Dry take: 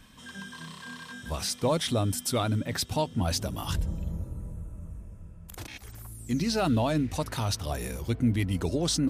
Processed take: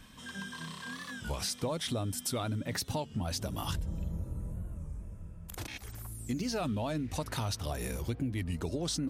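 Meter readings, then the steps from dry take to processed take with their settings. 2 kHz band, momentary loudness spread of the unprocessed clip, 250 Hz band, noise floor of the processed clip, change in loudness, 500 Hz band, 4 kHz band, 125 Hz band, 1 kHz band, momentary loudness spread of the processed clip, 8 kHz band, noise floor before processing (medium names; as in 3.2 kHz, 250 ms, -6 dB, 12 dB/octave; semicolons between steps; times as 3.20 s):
-3.5 dB, 17 LU, -7.0 dB, -49 dBFS, -7.0 dB, -7.0 dB, -5.5 dB, -6.0 dB, -6.5 dB, 10 LU, -4.5 dB, -48 dBFS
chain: compression 6:1, threshold -31 dBFS, peak gain reduction 11 dB; warped record 33 1/3 rpm, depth 160 cents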